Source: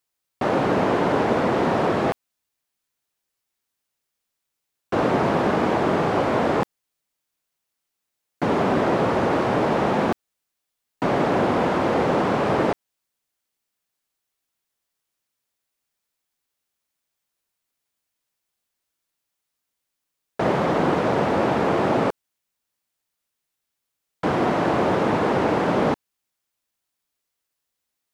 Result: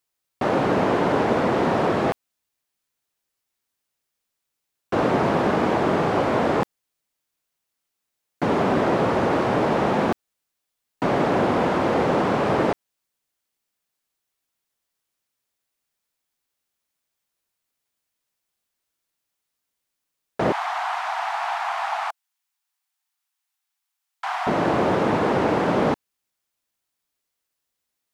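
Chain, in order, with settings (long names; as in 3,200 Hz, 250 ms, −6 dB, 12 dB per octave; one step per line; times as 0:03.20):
0:20.52–0:24.47: Butterworth high-pass 700 Hz 96 dB per octave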